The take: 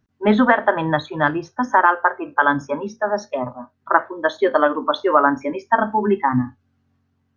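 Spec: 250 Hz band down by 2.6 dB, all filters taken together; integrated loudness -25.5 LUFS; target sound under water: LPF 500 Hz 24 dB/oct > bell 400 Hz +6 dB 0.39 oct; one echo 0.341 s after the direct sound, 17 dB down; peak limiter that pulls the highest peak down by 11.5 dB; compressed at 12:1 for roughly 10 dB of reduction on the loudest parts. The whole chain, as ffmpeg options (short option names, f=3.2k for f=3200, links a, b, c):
-af "equalizer=f=250:t=o:g=-4.5,acompressor=threshold=-20dB:ratio=12,alimiter=limit=-20.5dB:level=0:latency=1,lowpass=f=500:w=0.5412,lowpass=f=500:w=1.3066,equalizer=f=400:t=o:w=0.39:g=6,aecho=1:1:341:0.141,volume=7dB"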